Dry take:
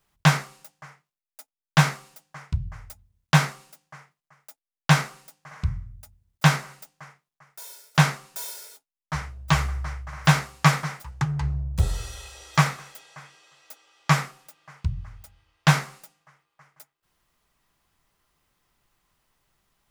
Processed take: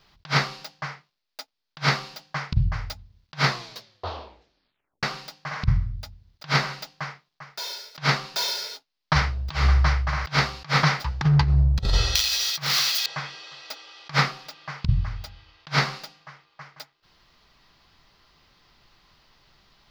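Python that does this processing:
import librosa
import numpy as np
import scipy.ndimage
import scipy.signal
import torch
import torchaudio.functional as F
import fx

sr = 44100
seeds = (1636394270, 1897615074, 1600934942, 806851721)

y = fx.crossing_spikes(x, sr, level_db=-11.5, at=(12.15, 13.06))
y = fx.edit(y, sr, fx.tape_stop(start_s=3.44, length_s=1.59), tone=tone)
y = fx.high_shelf_res(y, sr, hz=6400.0, db=-12.5, q=3.0)
y = fx.over_compress(y, sr, threshold_db=-27.0, ratio=-0.5)
y = y * 10.0 ** (6.0 / 20.0)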